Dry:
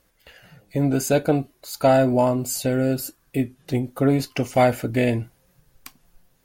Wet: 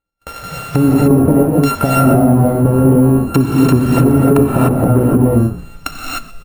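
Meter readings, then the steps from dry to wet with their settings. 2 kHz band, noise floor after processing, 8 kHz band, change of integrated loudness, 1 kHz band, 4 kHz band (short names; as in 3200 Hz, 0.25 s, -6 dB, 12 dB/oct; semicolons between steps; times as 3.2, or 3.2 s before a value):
+4.5 dB, -38 dBFS, +4.0 dB, +10.0 dB, +7.0 dB, +5.5 dB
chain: sample sorter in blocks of 32 samples; gate -57 dBFS, range -36 dB; compressor 16:1, threshold -25 dBFS, peak gain reduction 14 dB; treble ducked by the level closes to 440 Hz, closed at -28 dBFS; on a send: frequency-shifting echo 0.125 s, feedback 34%, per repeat -51 Hz, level -18.5 dB; on the sum: non-linear reverb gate 0.33 s rising, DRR -3.5 dB; careless resampling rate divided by 4×, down none, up hold; maximiser +20 dB; gain -1 dB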